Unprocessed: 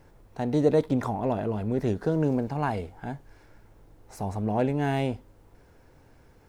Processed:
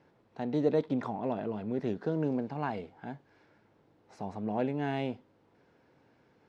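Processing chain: Chebyshev band-pass 180–3900 Hz, order 2; gain -5 dB

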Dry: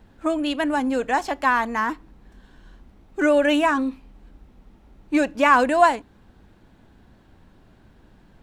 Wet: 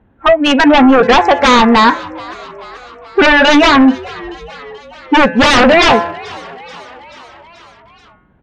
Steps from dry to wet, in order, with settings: Wiener smoothing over 9 samples; spectral noise reduction 23 dB; HPF 50 Hz; de-hum 170.8 Hz, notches 16; in parallel at -1.5 dB: compressor, threshold -25 dBFS, peak gain reduction 14 dB; on the sum: sine folder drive 17 dB, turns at -2 dBFS; air absorption 150 m; on a send: frequency-shifting echo 0.433 s, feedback 63%, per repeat +83 Hz, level -21 dB; on the sum: gain -1 dB

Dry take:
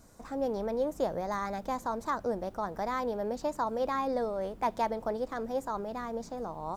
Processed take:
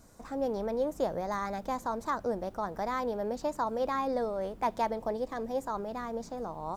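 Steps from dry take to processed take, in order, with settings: 4.98–5.62 notch 1400 Hz, Q 5

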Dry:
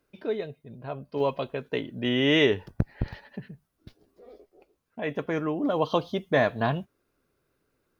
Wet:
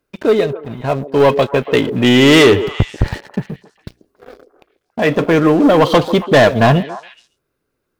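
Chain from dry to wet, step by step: 3.43–5.3 notches 60/120/180/240/300/360/420/480/540/600 Hz; sample leveller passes 3; delay with a stepping band-pass 0.139 s, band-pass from 380 Hz, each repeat 1.4 oct, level -9.5 dB; gain +7 dB

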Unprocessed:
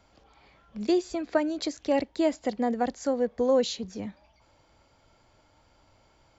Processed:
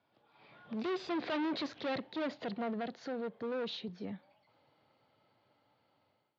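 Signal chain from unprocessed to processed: Doppler pass-by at 1.37, 16 m/s, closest 5.1 m; one-sided clip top -47.5 dBFS, bottom -36.5 dBFS; AGC gain up to 13.5 dB; limiter -31 dBFS, peak gain reduction 8 dB; elliptic band-pass 120–4000 Hz, stop band 40 dB

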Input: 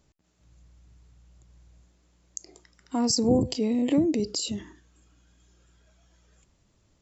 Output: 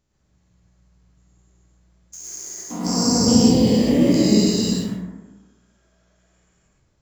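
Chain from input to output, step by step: spectral dilation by 0.48 s; dynamic EQ 200 Hz, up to +7 dB, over -33 dBFS, Q 1.6; in parallel at -5 dB: bit-crush 5-bit; on the sum: plate-style reverb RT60 1.2 s, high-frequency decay 0.35×, pre-delay 95 ms, DRR -5.5 dB; gain -12 dB

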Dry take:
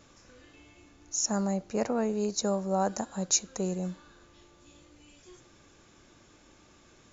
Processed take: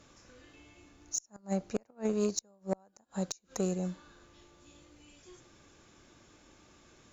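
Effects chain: flipped gate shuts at -20 dBFS, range -33 dB; added harmonics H 3 -19 dB, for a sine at -19.5 dBFS; gain +2 dB

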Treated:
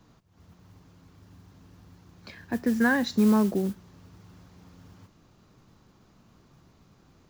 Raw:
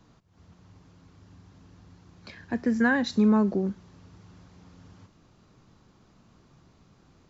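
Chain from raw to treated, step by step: modulation noise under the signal 23 dB

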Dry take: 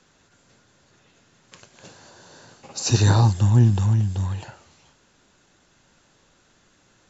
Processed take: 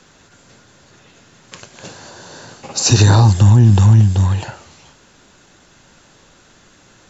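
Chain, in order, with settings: maximiser +12 dB; gain -1 dB

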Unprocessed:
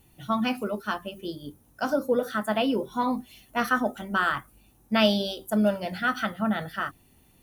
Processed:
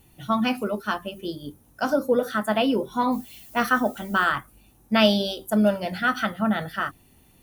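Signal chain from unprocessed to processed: 3.11–4.24 added noise violet -51 dBFS; gain +3 dB

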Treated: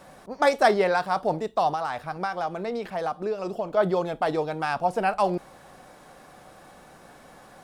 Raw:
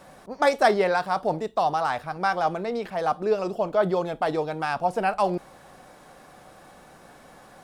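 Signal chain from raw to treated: 1.73–3.77 compressor, threshold -25 dBFS, peak gain reduction 8 dB

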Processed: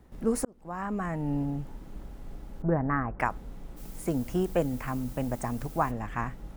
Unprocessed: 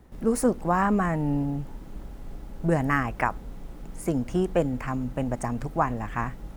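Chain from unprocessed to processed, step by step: 0.45–1.43 fade in; 2.62–3.2 LPF 1600 Hz 24 dB/oct; 3.76–5.9 added noise blue -49 dBFS; gain -3 dB

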